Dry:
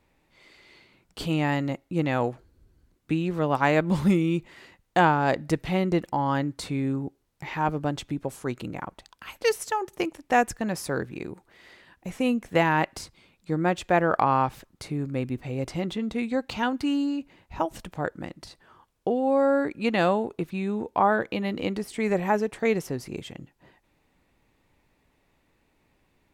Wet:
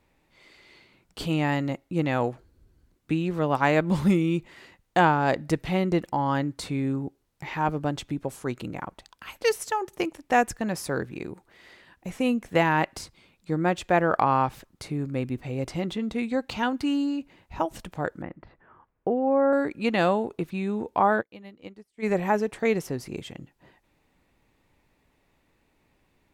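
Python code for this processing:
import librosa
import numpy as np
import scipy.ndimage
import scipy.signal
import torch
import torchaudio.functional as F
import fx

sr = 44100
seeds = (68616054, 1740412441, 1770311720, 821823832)

y = fx.lowpass(x, sr, hz=2100.0, slope=24, at=(18.22, 19.53))
y = fx.upward_expand(y, sr, threshold_db=-39.0, expansion=2.5, at=(21.2, 22.02), fade=0.02)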